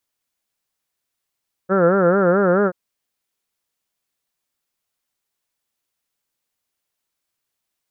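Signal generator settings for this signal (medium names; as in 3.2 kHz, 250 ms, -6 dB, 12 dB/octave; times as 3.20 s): formant-synthesis vowel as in heard, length 1.03 s, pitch 181 Hz, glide +1 st, vibrato 4.6 Hz, vibrato depth 1.4 st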